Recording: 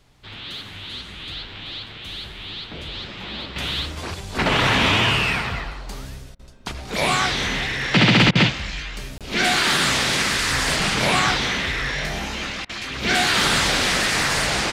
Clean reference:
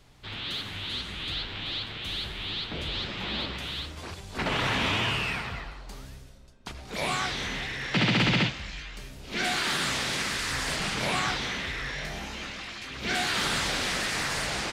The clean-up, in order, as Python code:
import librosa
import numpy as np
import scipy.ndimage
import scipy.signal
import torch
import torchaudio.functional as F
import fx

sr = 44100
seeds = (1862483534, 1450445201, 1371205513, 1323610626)

y = fx.fix_interpolate(x, sr, at_s=(9.18,), length_ms=27.0)
y = fx.fix_interpolate(y, sr, at_s=(6.35, 8.31, 12.65), length_ms=42.0)
y = fx.gain(y, sr, db=fx.steps((0.0, 0.0), (3.56, -9.0)))